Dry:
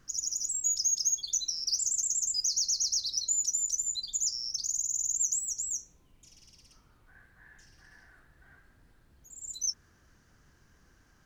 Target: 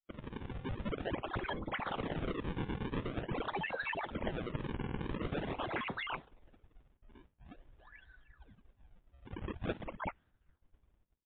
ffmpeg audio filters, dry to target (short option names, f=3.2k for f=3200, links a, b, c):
-af "afftdn=nr=18:nf=-44,aecho=1:1:383:0.316,areverse,acompressor=threshold=-43dB:ratio=10,areverse,acrusher=samples=39:mix=1:aa=0.000001:lfo=1:lforange=62.4:lforate=0.46,dynaudnorm=f=190:g=7:m=7dB,agate=range=-33dB:threshold=-59dB:ratio=3:detection=peak,volume=1.5dB" -ar 8000 -c:a libmp3lame -b:a 32k